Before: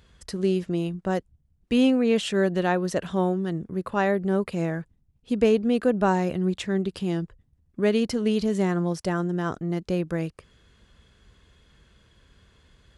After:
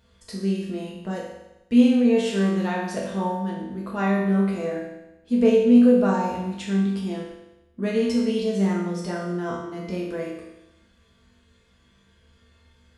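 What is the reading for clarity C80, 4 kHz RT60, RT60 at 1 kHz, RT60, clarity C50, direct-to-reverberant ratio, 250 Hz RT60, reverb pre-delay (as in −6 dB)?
4.5 dB, 0.95 s, 0.95 s, 0.95 s, 1.5 dB, −5.5 dB, 0.95 s, 4 ms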